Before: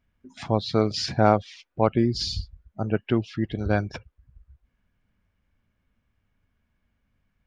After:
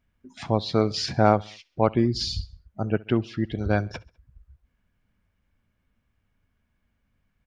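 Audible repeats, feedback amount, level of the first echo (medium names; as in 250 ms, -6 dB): 2, 53%, -24.0 dB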